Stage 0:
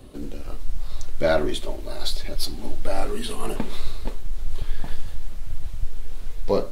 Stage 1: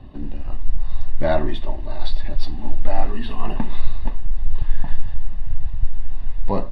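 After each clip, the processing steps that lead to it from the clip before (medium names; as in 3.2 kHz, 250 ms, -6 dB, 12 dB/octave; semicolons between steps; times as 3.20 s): distance through air 340 m; comb 1.1 ms, depth 64%; trim +2 dB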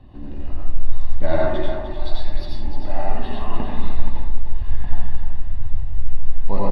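delay 302 ms -8.5 dB; plate-style reverb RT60 0.65 s, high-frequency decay 0.55×, pre-delay 75 ms, DRR -4 dB; trim -5.5 dB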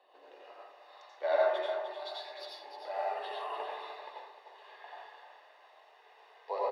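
Chebyshev high-pass 430 Hz, order 5; trim -5 dB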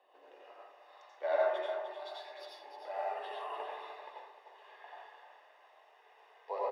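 peaking EQ 4.2 kHz -9 dB 0.31 oct; trim -2.5 dB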